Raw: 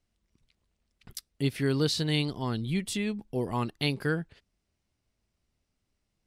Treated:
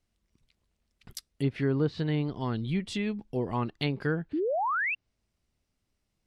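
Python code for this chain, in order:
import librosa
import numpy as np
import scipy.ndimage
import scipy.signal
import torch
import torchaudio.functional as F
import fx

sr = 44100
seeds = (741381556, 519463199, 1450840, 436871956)

y = fx.spec_paint(x, sr, seeds[0], shape='rise', start_s=4.33, length_s=0.62, low_hz=280.0, high_hz=2800.0, level_db=-28.0)
y = fx.env_lowpass_down(y, sr, base_hz=1300.0, full_db=-22.5)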